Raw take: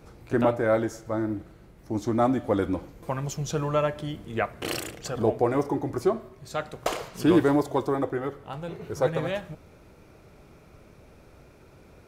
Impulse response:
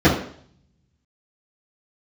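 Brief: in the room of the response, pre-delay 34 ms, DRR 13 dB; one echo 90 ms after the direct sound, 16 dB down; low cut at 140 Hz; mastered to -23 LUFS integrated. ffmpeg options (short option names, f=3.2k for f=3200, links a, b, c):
-filter_complex "[0:a]highpass=140,aecho=1:1:90:0.158,asplit=2[a][b];[1:a]atrim=start_sample=2205,adelay=34[c];[b][c]afir=irnorm=-1:irlink=0,volume=-36.5dB[d];[a][d]amix=inputs=2:normalize=0,volume=3.5dB"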